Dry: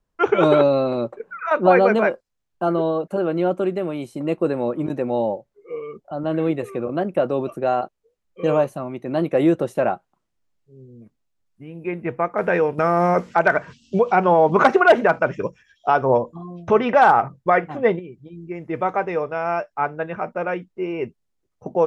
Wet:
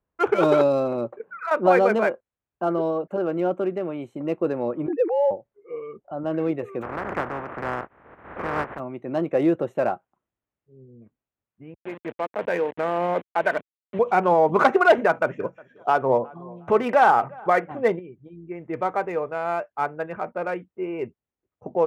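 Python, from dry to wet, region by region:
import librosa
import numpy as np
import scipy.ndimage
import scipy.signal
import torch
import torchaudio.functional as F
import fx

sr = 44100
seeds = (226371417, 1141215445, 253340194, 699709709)

y = fx.chain(x, sr, fx.sine_speech(),
    fx.peak_eq(hz=290.0, db=6.5, octaves=2.2), at=(4.88, 5.31))
y = fx.spec_flatten(y, sr, power=0.15, at=(6.81, 8.78), fade=0.02)
y = fx.lowpass(y, sr, hz=1700.0, slope=24, at=(6.81, 8.78), fade=0.02)
y = fx.pre_swell(y, sr, db_per_s=58.0, at=(6.81, 8.78), fade=0.02)
y = fx.chain(y, sr, fx.delta_hold(step_db=-25.0),
    fx.cabinet(low_hz=220.0, low_slope=12, high_hz=3300.0, hz=(390.0, 740.0, 1300.0), db=(-5, -3, -8)), at=(11.74, 13.99))
y = fx.chain(y, sr, fx.highpass(hz=110.0, slope=12),
    fx.echo_feedback(ms=361, feedback_pct=28, wet_db=-24), at=(14.98, 17.72))
y = fx.wiener(y, sr, points=9)
y = scipy.signal.sosfilt(scipy.signal.butter(2, 57.0, 'highpass', fs=sr, output='sos'), y)
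y = fx.peak_eq(y, sr, hz=170.0, db=-3.5, octaves=0.99)
y = F.gain(torch.from_numpy(y), -2.5).numpy()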